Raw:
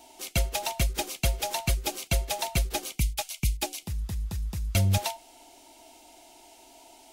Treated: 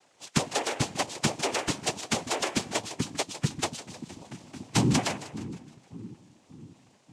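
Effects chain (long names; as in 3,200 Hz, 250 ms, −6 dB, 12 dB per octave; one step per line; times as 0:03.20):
spectral magnitudes quantised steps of 15 dB
in parallel at −6 dB: bit-depth reduction 6 bits, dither none
on the sum: noise reduction from a noise print of the clip's start 10 dB
echo with a time of its own for lows and highs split 350 Hz, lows 581 ms, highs 155 ms, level −13.5 dB
on a send at −23 dB: convolution reverb RT60 0.65 s, pre-delay 88 ms
0:03.81–0:04.69: on the sum: bad sample-rate conversion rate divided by 3×, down none, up zero stuff
cochlear-implant simulation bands 4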